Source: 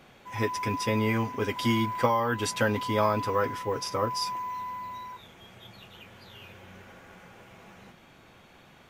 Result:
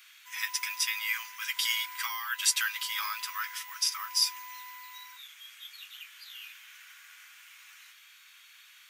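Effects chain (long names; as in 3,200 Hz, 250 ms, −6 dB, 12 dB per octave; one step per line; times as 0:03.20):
Bessel high-pass filter 2,300 Hz, order 8
high-shelf EQ 8,400 Hz +8 dB
level +6 dB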